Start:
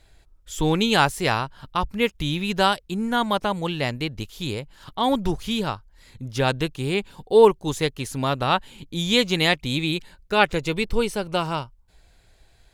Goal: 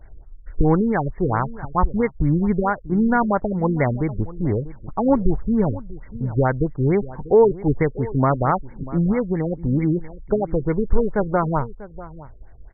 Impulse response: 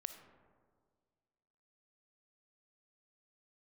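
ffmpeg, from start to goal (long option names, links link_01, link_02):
-filter_complex "[0:a]lowshelf=frequency=73:gain=8.5,alimiter=limit=-13dB:level=0:latency=1:release=273,asplit=2[link_01][link_02];[link_02]adelay=641.4,volume=-17dB,highshelf=frequency=4000:gain=-14.4[link_03];[link_01][link_03]amix=inputs=2:normalize=0,afftfilt=real='re*lt(b*sr/1024,510*pow(2300/510,0.5+0.5*sin(2*PI*4.5*pts/sr)))':imag='im*lt(b*sr/1024,510*pow(2300/510,0.5+0.5*sin(2*PI*4.5*pts/sr)))':win_size=1024:overlap=0.75,volume=7dB"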